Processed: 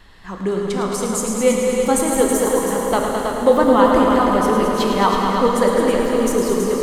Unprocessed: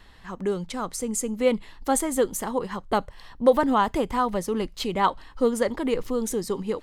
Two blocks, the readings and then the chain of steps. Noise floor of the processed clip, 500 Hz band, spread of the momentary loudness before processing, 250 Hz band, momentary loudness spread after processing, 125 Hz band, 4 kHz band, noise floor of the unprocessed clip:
−30 dBFS, +9.0 dB, 8 LU, +9.0 dB, 8 LU, +9.0 dB, +7.5 dB, −49 dBFS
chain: on a send: echo machine with several playback heads 108 ms, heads all three, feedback 44%, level −9 dB
on the sum: dense smooth reverb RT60 4.7 s, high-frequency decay 0.75×, DRR 0.5 dB
level +3.5 dB

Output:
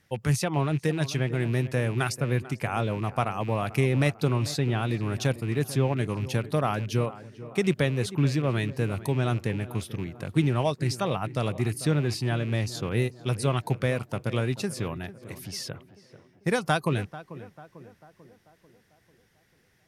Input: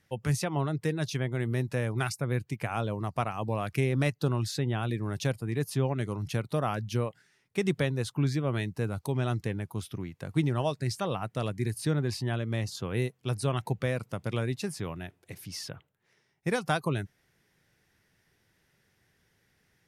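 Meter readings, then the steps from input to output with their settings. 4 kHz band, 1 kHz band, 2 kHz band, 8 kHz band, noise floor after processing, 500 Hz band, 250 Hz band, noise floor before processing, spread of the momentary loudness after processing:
+4.0 dB, +3.5 dB, +4.0 dB, +3.5 dB, −65 dBFS, +3.5 dB, +3.5 dB, −72 dBFS, 9 LU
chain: loose part that buzzes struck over −33 dBFS, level −37 dBFS
on a send: tape delay 443 ms, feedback 59%, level −13.5 dB, low-pass 1,400 Hz
on the sum: level +3.5 dB

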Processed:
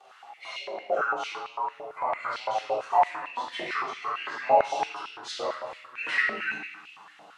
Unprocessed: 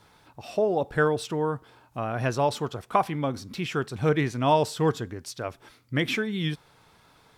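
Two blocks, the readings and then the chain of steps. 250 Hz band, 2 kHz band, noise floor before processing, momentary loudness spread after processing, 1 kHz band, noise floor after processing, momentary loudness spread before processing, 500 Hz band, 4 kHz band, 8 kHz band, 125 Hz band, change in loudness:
−18.5 dB, +2.5 dB, −59 dBFS, 14 LU, +2.5 dB, −53 dBFS, 13 LU, −4.5 dB, −2.0 dB, −6.5 dB, below −25 dB, −2.0 dB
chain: partials spread apart or drawn together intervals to 91%
flanger 0.53 Hz, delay 7.6 ms, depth 2.5 ms, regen +34%
parametric band 1,700 Hz −4 dB 0.21 octaves
in parallel at +2.5 dB: output level in coarse steps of 19 dB
on the sum: high-shelf EQ 11,000 Hz −10.5 dB
downward compressor 3 to 1, threshold −35 dBFS, peak gain reduction 12 dB
rectangular room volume 760 cubic metres, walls mixed, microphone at 3.6 metres
high-pass on a step sequencer 8.9 Hz 630–2,700 Hz

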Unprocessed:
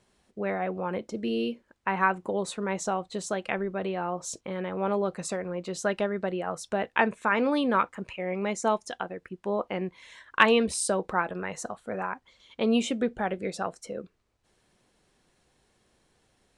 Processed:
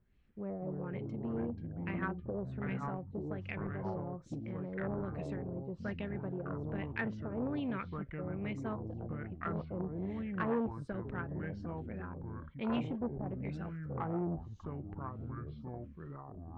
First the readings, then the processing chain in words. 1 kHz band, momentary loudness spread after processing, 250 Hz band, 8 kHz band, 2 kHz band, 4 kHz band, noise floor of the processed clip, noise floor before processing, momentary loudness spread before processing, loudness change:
−15.0 dB, 8 LU, −6.5 dB, below −35 dB, −14.5 dB, −21.0 dB, −51 dBFS, −70 dBFS, 11 LU, −10.5 dB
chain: auto-filter low-pass sine 1.2 Hz 560–2,500 Hz
guitar amp tone stack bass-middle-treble 10-0-1
delay with pitch and tempo change per echo 120 ms, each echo −5 semitones, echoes 3
saturating transformer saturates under 530 Hz
level +10 dB

